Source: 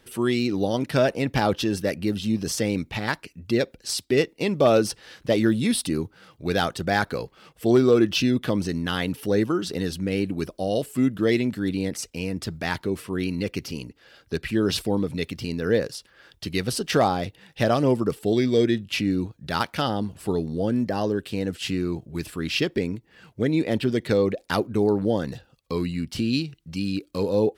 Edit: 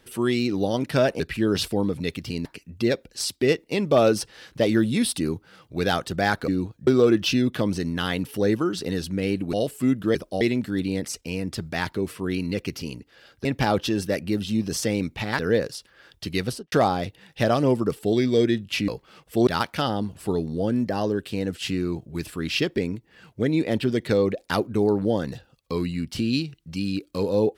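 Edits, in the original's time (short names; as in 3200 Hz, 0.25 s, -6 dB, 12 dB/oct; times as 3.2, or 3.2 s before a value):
1.2–3.14 swap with 14.34–15.59
7.17–7.76 swap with 19.08–19.47
10.42–10.68 move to 11.3
16.64–16.92 studio fade out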